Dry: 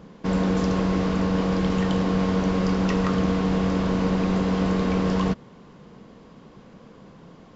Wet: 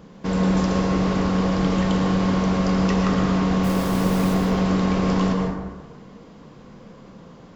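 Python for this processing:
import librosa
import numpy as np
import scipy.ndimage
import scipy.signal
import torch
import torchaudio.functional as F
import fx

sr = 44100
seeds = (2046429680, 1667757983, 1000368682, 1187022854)

y = fx.high_shelf(x, sr, hz=5800.0, db=6.0)
y = fx.quant_dither(y, sr, seeds[0], bits=6, dither='none', at=(3.63, 4.33), fade=0.02)
y = fx.rev_plate(y, sr, seeds[1], rt60_s=1.4, hf_ratio=0.4, predelay_ms=100, drr_db=1.5)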